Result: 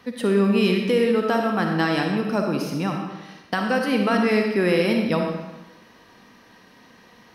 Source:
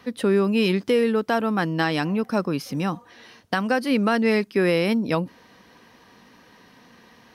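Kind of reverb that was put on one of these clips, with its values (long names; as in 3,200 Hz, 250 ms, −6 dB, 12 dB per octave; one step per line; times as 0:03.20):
comb and all-pass reverb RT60 1.1 s, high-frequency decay 0.85×, pre-delay 15 ms, DRR 2 dB
level −1 dB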